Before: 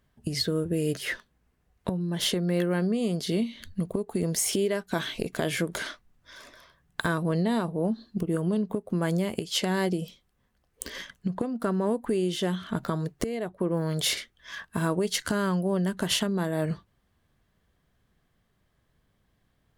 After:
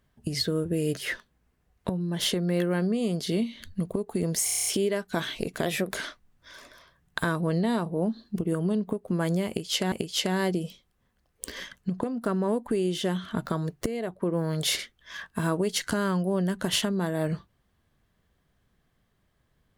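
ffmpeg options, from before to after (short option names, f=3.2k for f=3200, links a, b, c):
-filter_complex "[0:a]asplit=11[a][b][c][d][e][f][g][h][i][j][k];[a]atrim=end=4.482[l];[b]atrim=start=4.448:end=4.482[m];[c]atrim=start=4.448:end=4.482[n];[d]atrim=start=4.448:end=4.482[o];[e]atrim=start=4.448:end=4.482[p];[f]atrim=start=4.448:end=4.482[q];[g]atrim=start=4.448:end=4.482[r];[h]atrim=start=4.448:end=5.454[s];[i]atrim=start=5.45:end=5.76,asetpts=PTS-STARTPTS,asetrate=48951,aresample=44100,atrim=end_sample=12316,asetpts=PTS-STARTPTS[t];[j]atrim=start=5.756:end=9.742[u];[k]atrim=start=9.298[v];[l][m]acrossfade=d=0.004:c1=hsin:c2=hsin[w];[w][n]acrossfade=d=0.004:c1=hsin:c2=hsin[x];[x][o]acrossfade=d=0.004:c1=hsin:c2=hsin[y];[y][p]acrossfade=d=0.004:c1=hsin:c2=hsin[z];[z][q]acrossfade=d=0.004:c1=hsin:c2=hsin[aa];[aa][r]acrossfade=d=0.004:c1=hsin:c2=hsin[ab];[ab][s]acrossfade=d=0.004:c1=hsin:c2=hsin[ac];[ac][t]acrossfade=d=0.004:c1=hsin:c2=hsin[ad];[ad][u]acrossfade=d=0.004:c1=hsin:c2=hsin[ae];[ae][v]acrossfade=d=0.004:c1=hsin:c2=hsin"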